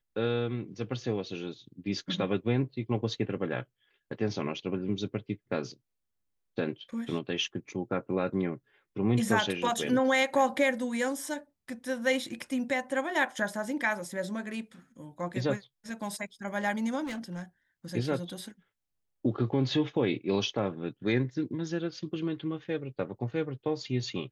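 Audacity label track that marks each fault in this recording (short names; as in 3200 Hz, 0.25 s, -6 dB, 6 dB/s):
17.030000	17.430000	clipped -33.5 dBFS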